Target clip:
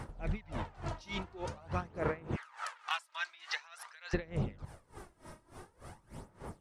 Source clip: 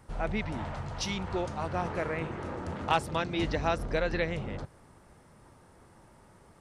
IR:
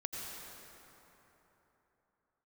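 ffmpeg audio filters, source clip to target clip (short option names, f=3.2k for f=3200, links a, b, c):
-filter_complex "[0:a]asplit=3[a][b][c];[a]afade=t=out:st=2.35:d=0.02[d];[b]highpass=f=1.1k:w=0.5412,highpass=f=1.1k:w=1.3066,afade=t=in:st=2.35:d=0.02,afade=t=out:st=4.13:d=0.02[e];[c]afade=t=in:st=4.13:d=0.02[f];[d][e][f]amix=inputs=3:normalize=0,acompressor=threshold=-41dB:ratio=5,aphaser=in_gain=1:out_gain=1:delay=3.2:decay=0.51:speed=0.47:type=sinusoidal,aeval=exprs='val(0)*pow(10,-24*(0.5-0.5*cos(2*PI*3.4*n/s))/20)':c=same,volume=9dB"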